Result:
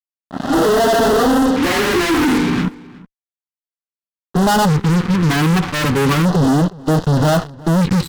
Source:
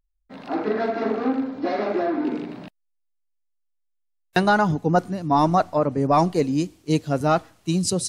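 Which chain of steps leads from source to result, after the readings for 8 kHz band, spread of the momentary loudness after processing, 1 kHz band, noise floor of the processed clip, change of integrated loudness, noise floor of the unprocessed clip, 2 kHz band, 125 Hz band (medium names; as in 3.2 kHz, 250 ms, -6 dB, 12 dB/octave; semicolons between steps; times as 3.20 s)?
+6.5 dB, 5 LU, +4.0 dB, under -85 dBFS, +7.5 dB, -73 dBFS, +9.0 dB, +11.0 dB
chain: harmonic-percussive separation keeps harmonic; level rider gain up to 14 dB; doubling 12 ms -10.5 dB; dynamic bell 280 Hz, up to -6 dB, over -26 dBFS, Q 1.5; low-pass 4 kHz 24 dB/octave; band-stop 2.7 kHz; in parallel at 0 dB: level held to a coarse grid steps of 23 dB; on the sum: fuzz box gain 31 dB, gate -33 dBFS; echo from a far wall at 63 m, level -21 dB; LFO notch square 0.32 Hz 640–2300 Hz; trim +1.5 dB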